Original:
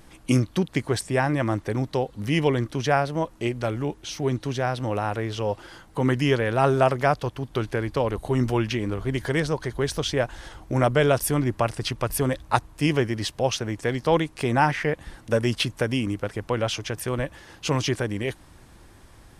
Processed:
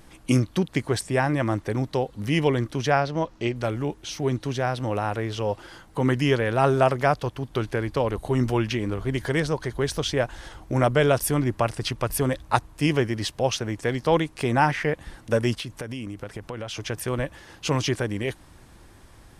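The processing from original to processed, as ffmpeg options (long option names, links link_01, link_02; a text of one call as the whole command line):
ffmpeg -i in.wav -filter_complex "[0:a]asettb=1/sr,asplit=3[link_01][link_02][link_03];[link_01]atrim=end=2.904[link_04];[link_02]atrim=start=2.9:end=3.56,asetpts=PTS-STARTPTS,afade=type=in:duration=0.004:curve=qsin,afade=type=out:start_time=0.656:duration=0.004:curve=qsin,highshelf=frequency=7300:width_type=q:width=1.5:gain=-10[link_05];[link_03]atrim=start=3.556[link_06];[link_04][link_05]acrossfade=duration=0.004:curve1=hsin:curve2=qsin[link_07];[link_07][link_06]acrossfade=duration=0.004:curve1=qsin:curve2=hsin,asplit=3[link_08][link_09][link_10];[link_08]afade=type=out:start_time=15.54:duration=0.02[link_11];[link_09]acompressor=threshold=-30dB:ratio=6:attack=3.2:release=140:knee=1:detection=peak,afade=type=in:start_time=15.54:duration=0.02,afade=type=out:start_time=16.75:duration=0.02[link_12];[link_10]afade=type=in:start_time=16.75:duration=0.02[link_13];[link_11][link_12][link_13]amix=inputs=3:normalize=0" out.wav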